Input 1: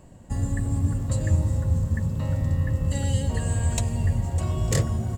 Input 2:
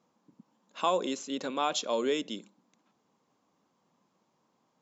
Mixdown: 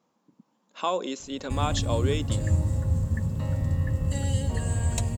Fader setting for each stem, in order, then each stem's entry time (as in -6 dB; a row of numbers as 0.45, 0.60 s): -2.0, +0.5 dB; 1.20, 0.00 s